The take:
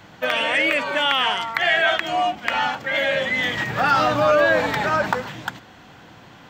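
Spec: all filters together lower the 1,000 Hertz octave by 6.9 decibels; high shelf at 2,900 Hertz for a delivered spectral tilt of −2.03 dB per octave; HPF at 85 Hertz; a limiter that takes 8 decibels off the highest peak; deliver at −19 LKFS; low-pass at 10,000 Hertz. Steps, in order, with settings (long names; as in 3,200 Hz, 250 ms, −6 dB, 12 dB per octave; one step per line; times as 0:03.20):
high-pass filter 85 Hz
low-pass filter 10,000 Hz
parametric band 1,000 Hz −9 dB
high-shelf EQ 2,900 Hz −8 dB
level +8 dB
brickwall limiter −10 dBFS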